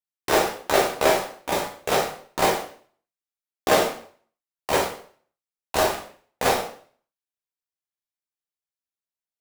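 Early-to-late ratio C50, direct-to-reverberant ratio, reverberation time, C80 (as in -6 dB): 6.0 dB, -2.0 dB, 0.50 s, 11.0 dB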